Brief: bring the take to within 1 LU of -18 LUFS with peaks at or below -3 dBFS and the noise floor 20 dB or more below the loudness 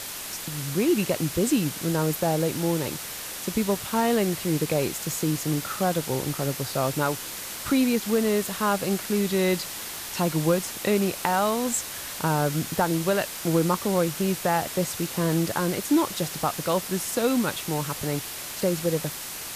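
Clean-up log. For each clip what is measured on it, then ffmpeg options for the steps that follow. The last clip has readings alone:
noise floor -36 dBFS; noise floor target -46 dBFS; loudness -25.5 LUFS; peak level -6.0 dBFS; loudness target -18.0 LUFS
-> -af "afftdn=nr=10:nf=-36"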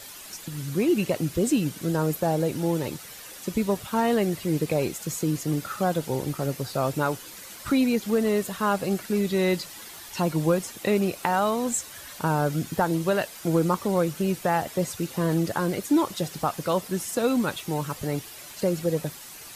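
noise floor -43 dBFS; noise floor target -46 dBFS
-> -af "afftdn=nr=6:nf=-43"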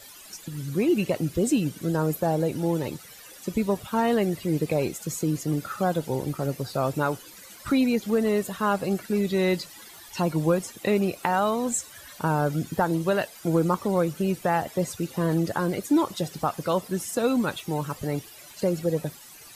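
noise floor -47 dBFS; loudness -26.0 LUFS; peak level -6.5 dBFS; loudness target -18.0 LUFS
-> -af "volume=2.51,alimiter=limit=0.708:level=0:latency=1"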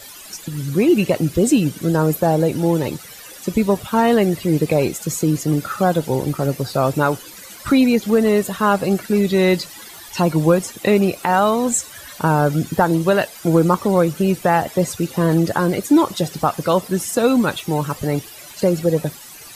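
loudness -18.0 LUFS; peak level -3.0 dBFS; noise floor -39 dBFS

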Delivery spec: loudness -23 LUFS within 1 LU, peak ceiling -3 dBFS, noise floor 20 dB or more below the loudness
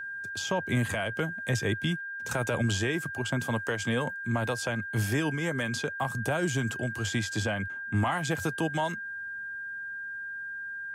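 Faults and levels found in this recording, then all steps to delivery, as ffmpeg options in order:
steady tone 1.6 kHz; tone level -35 dBFS; loudness -30.5 LUFS; peak level -16.0 dBFS; loudness target -23.0 LUFS
-> -af "bandreject=f=1600:w=30"
-af "volume=2.37"

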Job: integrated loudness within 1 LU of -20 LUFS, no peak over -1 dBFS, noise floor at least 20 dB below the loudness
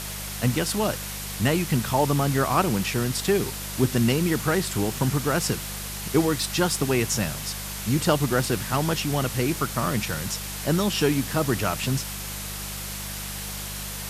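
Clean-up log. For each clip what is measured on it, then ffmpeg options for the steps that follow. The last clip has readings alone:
hum 50 Hz; highest harmonic 200 Hz; hum level -36 dBFS; noise floor -34 dBFS; noise floor target -45 dBFS; loudness -25.0 LUFS; peak level -7.5 dBFS; loudness target -20.0 LUFS
-> -af "bandreject=f=50:t=h:w=4,bandreject=f=100:t=h:w=4,bandreject=f=150:t=h:w=4,bandreject=f=200:t=h:w=4"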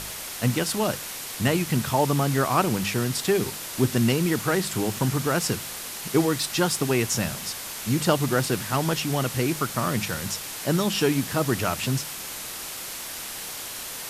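hum not found; noise floor -36 dBFS; noise floor target -45 dBFS
-> -af "afftdn=nr=9:nf=-36"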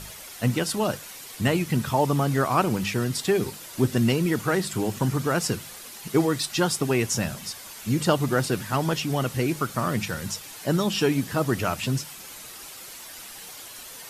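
noise floor -42 dBFS; noise floor target -46 dBFS
-> -af "afftdn=nr=6:nf=-42"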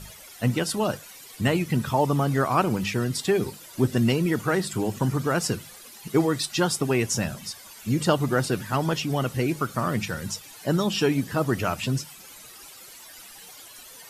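noise floor -46 dBFS; loudness -25.5 LUFS; peak level -7.5 dBFS; loudness target -20.0 LUFS
-> -af "volume=1.88"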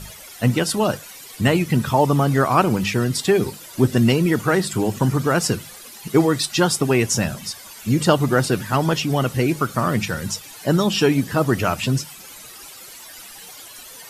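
loudness -20.0 LUFS; peak level -2.0 dBFS; noise floor -40 dBFS

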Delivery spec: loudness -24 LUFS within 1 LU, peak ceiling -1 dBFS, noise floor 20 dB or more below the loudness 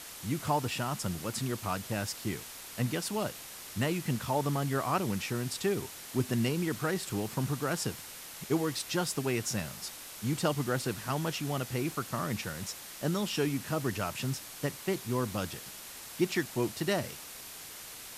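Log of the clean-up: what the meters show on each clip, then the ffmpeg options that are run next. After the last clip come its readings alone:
noise floor -46 dBFS; noise floor target -54 dBFS; loudness -33.5 LUFS; peak level -16.0 dBFS; loudness target -24.0 LUFS
-> -af "afftdn=nr=8:nf=-46"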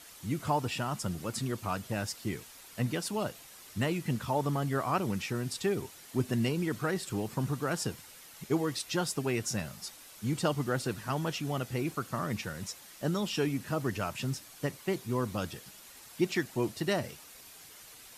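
noise floor -52 dBFS; noise floor target -54 dBFS
-> -af "afftdn=nr=6:nf=-52"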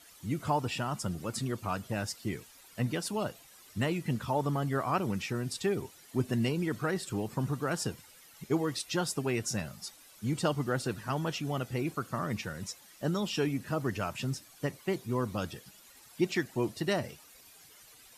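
noise floor -57 dBFS; loudness -33.5 LUFS; peak level -16.5 dBFS; loudness target -24.0 LUFS
-> -af "volume=2.99"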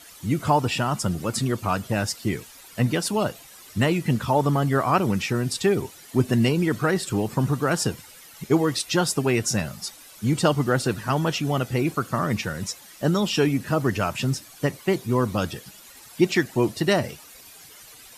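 loudness -24.0 LUFS; peak level -7.0 dBFS; noise floor -47 dBFS

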